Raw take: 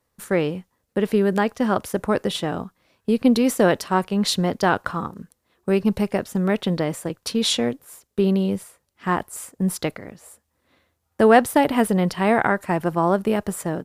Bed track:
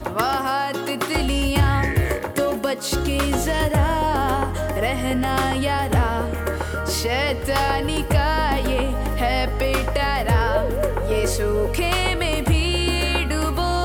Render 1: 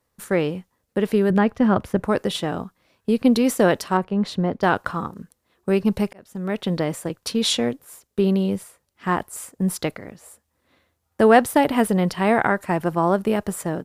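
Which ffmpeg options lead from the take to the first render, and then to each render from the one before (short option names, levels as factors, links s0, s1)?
-filter_complex "[0:a]asettb=1/sr,asplit=3[s0][s1][s2];[s0]atrim=end=1.304[s3];[s1]atrim=start=1.3:end=2.04,asetpts=PTS-STARTPTS,afade=t=in:d=0.004:c=qsin,afade=t=out:st=0.736:d=0.004:c=qsin,bass=f=250:g=8,treble=f=4000:g=-12[s4];[s2]atrim=start=2.036[s5];[s3][s4]acrossfade=d=0.004:c1=hsin:c2=qsin[s6];[s6][s5]acrossfade=d=0.004:c1=qsin:c2=hsin,asettb=1/sr,asplit=3[s7][s8][s9];[s7]atrim=end=3.974[s10];[s8]atrim=start=3.97:end=4.63,asetpts=PTS-STARTPTS,afade=t=in:d=0.004:c=qsin,afade=t=out:st=0.656:d=0.004:c=qsin,lowpass=f=1100:p=1[s11];[s9]atrim=start=4.626[s12];[s10][s11]acrossfade=d=0.004:c1=hsin:c2=qsin[s13];[s13][s12]acrossfade=d=0.004:c1=qsin:c2=hsin,asplit=2[s14][s15];[s14]atrim=end=6.13,asetpts=PTS-STARTPTS,afade=t=out:st=6.126:d=0.004:c=hsin[s16];[s15]atrim=start=6.13,asetpts=PTS-STARTPTS,afade=t=in:d=0.64[s17];[s16][s17]concat=n=2:v=0:a=1"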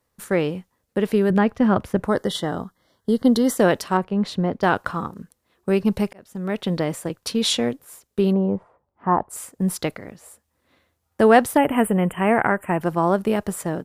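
-filter_complex "[0:a]asettb=1/sr,asplit=3[s0][s1][s2];[s0]atrim=end=2.094[s3];[s1]atrim=start=2.09:end=3.57,asetpts=PTS-STARTPTS,afade=t=in:d=0.004:c=qsin,afade=t=out:st=1.476:d=0.004:c=qsin,asuperstop=centerf=2500:order=8:qfactor=3.1[s4];[s2]atrim=start=3.566[s5];[s3][s4]acrossfade=d=0.004:c1=hsin:c2=qsin[s6];[s6][s5]acrossfade=d=0.004:c1=qsin:c2=hsin,asplit=3[s7][s8][s9];[s7]afade=t=out:st=8.32:d=0.02[s10];[s8]lowpass=f=900:t=q:w=2,afade=t=in:st=8.32:d=0.02,afade=t=out:st=9.29:d=0.02[s11];[s9]afade=t=in:st=9.29:d=0.02[s12];[s10][s11][s12]amix=inputs=3:normalize=0,asplit=3[s13][s14][s15];[s13]afade=t=out:st=11.56:d=0.02[s16];[s14]asuperstop=centerf=4900:order=12:qfactor=1.1,afade=t=in:st=11.56:d=0.02,afade=t=out:st=12.8:d=0.02[s17];[s15]afade=t=in:st=12.8:d=0.02[s18];[s16][s17][s18]amix=inputs=3:normalize=0"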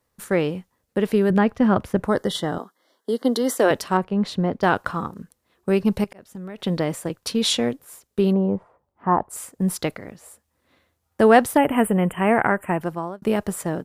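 -filter_complex "[0:a]asettb=1/sr,asplit=3[s0][s1][s2];[s0]atrim=end=2.584[s3];[s1]atrim=start=2.58:end=3.71,asetpts=PTS-STARTPTS,afade=t=in:d=0.004:c=qsin,afade=t=out:st=1.126:d=0.004:c=qsin,highpass=f=280:w=0.5412,highpass=f=280:w=1.3066[s4];[s2]atrim=start=3.706[s5];[s3][s4]acrossfade=d=0.004:c1=hsin:c2=qsin[s6];[s6][s5]acrossfade=d=0.004:c1=qsin:c2=hsin,asettb=1/sr,asplit=3[s7][s8][s9];[s7]atrim=end=6.044[s10];[s8]atrim=start=6.04:end=6.6,asetpts=PTS-STARTPTS,afade=t=in:d=0.004:c=qsin,afade=t=out:st=0.556:d=0.004:c=qsin,acompressor=threshold=0.0282:ratio=12:attack=3.2:release=140:knee=1:detection=peak[s11];[s9]atrim=start=6.596[s12];[s10][s11]acrossfade=d=0.004:c1=hsin:c2=qsin[s13];[s13][s12]acrossfade=d=0.004:c1=qsin:c2=hsin,asplit=2[s14][s15];[s14]atrim=end=13.22,asetpts=PTS-STARTPTS,afade=t=out:st=12.68:d=0.54[s16];[s15]atrim=start=13.22,asetpts=PTS-STARTPTS,afade=t=in:d=0.004:c=hsin[s17];[s16][s17]concat=n=2:v=0:a=1"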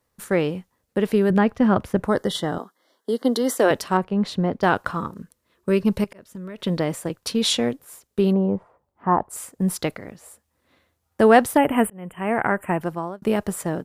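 -filter_complex "[0:a]asettb=1/sr,asplit=3[s0][s1][s2];[s0]atrim=end=4.974[s3];[s1]atrim=start=4.97:end=6.69,asetpts=PTS-STARTPTS,afade=t=in:d=0.004:c=qsin,afade=t=out:st=1.716:d=0.004:c=qsin,asuperstop=centerf=770:order=4:qfactor=5.6[s4];[s2]atrim=start=6.686[s5];[s3][s4]acrossfade=d=0.004:c1=hsin:c2=qsin[s6];[s6][s5]acrossfade=d=0.004:c1=qsin:c2=hsin,asplit=2[s7][s8];[s7]atrim=end=11.9,asetpts=PTS-STARTPTS,afade=t=out:st=11.896:d=0.004:c=hsin[s9];[s8]atrim=start=11.9,asetpts=PTS-STARTPTS,afade=t=in:d=0.71[s10];[s9][s10]concat=n=2:v=0:a=1"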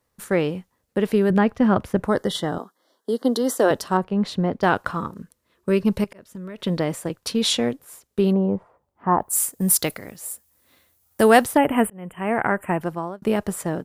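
-filter_complex "[0:a]asettb=1/sr,asplit=3[s0][s1][s2];[s0]atrim=end=2.494[s3];[s1]atrim=start=2.49:end=4.05,asetpts=PTS-STARTPTS,afade=t=in:d=0.004:c=qsin,afade=t=out:st=1.556:d=0.004:c=qsin,equalizer=f=2300:t=o:w=0.51:g=-9[s4];[s2]atrim=start=4.046[s5];[s3][s4]acrossfade=d=0.004:c1=hsin:c2=qsin[s6];[s6][s5]acrossfade=d=0.004:c1=qsin:c2=hsin,asettb=1/sr,asplit=3[s7][s8][s9];[s7]atrim=end=9.194[s10];[s8]atrim=start=9.19:end=11.45,asetpts=PTS-STARTPTS,afade=t=in:d=0.004:c=qsin,afade=t=out:st=2.256:d=0.004:c=qsin,aemphasis=mode=production:type=75fm[s11];[s9]atrim=start=11.446[s12];[s10][s11]acrossfade=d=0.004:c1=hsin:c2=qsin[s13];[s13][s12]acrossfade=d=0.004:c1=qsin:c2=hsin"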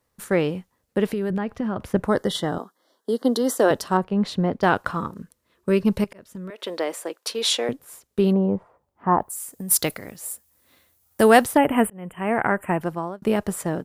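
-filter_complex "[0:a]asettb=1/sr,asplit=3[s0][s1][s2];[s0]atrim=end=1.054[s3];[s1]atrim=start=1.05:end=1.94,asetpts=PTS-STARTPTS,afade=t=in:d=0.004:c=qsin,afade=t=out:st=0.886:d=0.004:c=qsin,acompressor=threshold=0.0794:ratio=6:attack=3.2:release=140:knee=1:detection=peak[s4];[s2]atrim=start=1.936[s5];[s3][s4]acrossfade=d=0.004:c1=hsin:c2=qsin[s6];[s6][s5]acrossfade=d=0.004:c1=qsin:c2=hsin,asettb=1/sr,asplit=3[s7][s8][s9];[s7]atrim=end=6.504[s10];[s8]atrim=start=6.5:end=7.69,asetpts=PTS-STARTPTS,afade=t=in:d=0.004:c=qsin,afade=t=out:st=1.186:d=0.004:c=qsin,highpass=f=360:w=0.5412,highpass=f=360:w=1.3066[s11];[s9]atrim=start=7.686[s12];[s10][s11]acrossfade=d=0.004:c1=hsin:c2=qsin[s13];[s13][s12]acrossfade=d=0.004:c1=qsin:c2=hsin,asplit=3[s14][s15][s16];[s14]afade=t=out:st=9.27:d=0.02[s17];[s15]acompressor=threshold=0.0316:ratio=6:attack=3.2:release=140:knee=1:detection=peak,afade=t=in:st=9.27:d=0.02,afade=t=out:st=9.7:d=0.02[s18];[s16]afade=t=in:st=9.7:d=0.02[s19];[s17][s18][s19]amix=inputs=3:normalize=0"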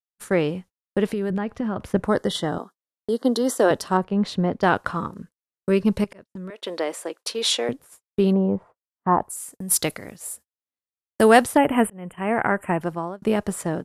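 -af "agate=range=0.00794:threshold=0.00891:ratio=16:detection=peak,lowpass=f=12000:w=0.5412,lowpass=f=12000:w=1.3066"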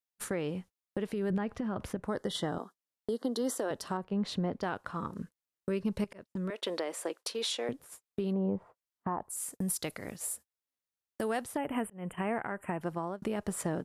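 -af "acompressor=threshold=0.0398:ratio=3,alimiter=limit=0.0708:level=0:latency=1:release=477"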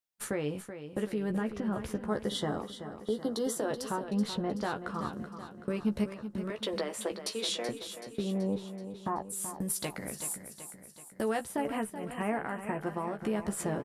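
-filter_complex "[0:a]asplit=2[s0][s1];[s1]adelay=14,volume=0.473[s2];[s0][s2]amix=inputs=2:normalize=0,aecho=1:1:379|758|1137|1516|1895|2274:0.299|0.164|0.0903|0.0497|0.0273|0.015"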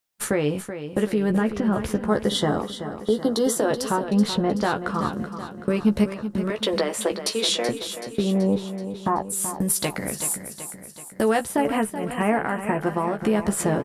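-af "volume=3.35"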